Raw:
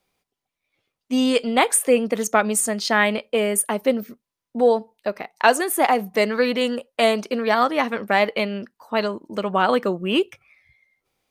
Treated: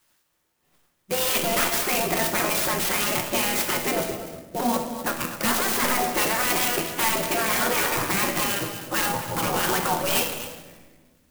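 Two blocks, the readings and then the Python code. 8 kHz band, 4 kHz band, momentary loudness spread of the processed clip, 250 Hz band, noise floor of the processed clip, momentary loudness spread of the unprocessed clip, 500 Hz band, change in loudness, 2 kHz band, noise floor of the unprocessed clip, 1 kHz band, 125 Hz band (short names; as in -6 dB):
+0.5 dB, +1.5 dB, 7 LU, -6.5 dB, -70 dBFS, 9 LU, -8.0 dB, -2.0 dB, -1.5 dB, under -85 dBFS, -3.5 dB, n/a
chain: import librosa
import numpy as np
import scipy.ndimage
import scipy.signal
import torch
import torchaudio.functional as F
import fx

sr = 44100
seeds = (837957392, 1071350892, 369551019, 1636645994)

p1 = fx.spec_gate(x, sr, threshold_db=-15, keep='weak')
p2 = fx.low_shelf(p1, sr, hz=380.0, db=8.0)
p3 = fx.over_compress(p2, sr, threshold_db=-38.0, ratio=-1.0)
p4 = p2 + (p3 * 10.0 ** (0.5 / 20.0))
p5 = fx.fold_sine(p4, sr, drive_db=10, ceiling_db=-8.0)
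p6 = fx.comb_fb(p5, sr, f0_hz=82.0, decay_s=0.45, harmonics='all', damping=0.0, mix_pct=70)
p7 = p6 + 10.0 ** (-12.5 / 20.0) * np.pad(p6, (int(248 * sr / 1000.0), 0))[:len(p6)]
p8 = fx.room_shoebox(p7, sr, seeds[0], volume_m3=1300.0, walls='mixed', distance_m=0.94)
p9 = fx.clock_jitter(p8, sr, seeds[1], jitter_ms=0.068)
y = p9 * 10.0 ** (-2.0 / 20.0)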